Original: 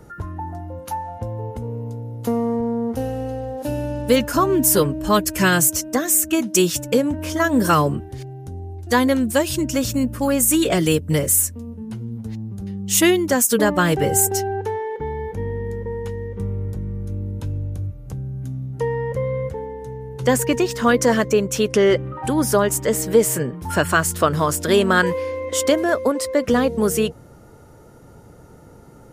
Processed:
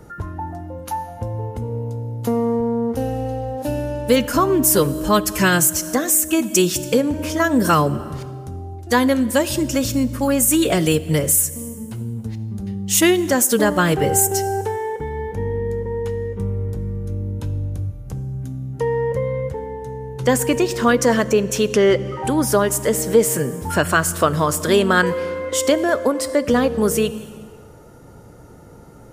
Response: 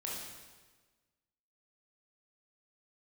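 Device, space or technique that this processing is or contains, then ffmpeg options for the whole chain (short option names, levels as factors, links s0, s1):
ducked reverb: -filter_complex "[0:a]asplit=3[s0][s1][s2];[1:a]atrim=start_sample=2205[s3];[s1][s3]afir=irnorm=-1:irlink=0[s4];[s2]apad=whole_len=1284338[s5];[s4][s5]sidechaincompress=threshold=0.0708:ratio=5:attack=21:release=266,volume=0.376[s6];[s0][s6]amix=inputs=2:normalize=0"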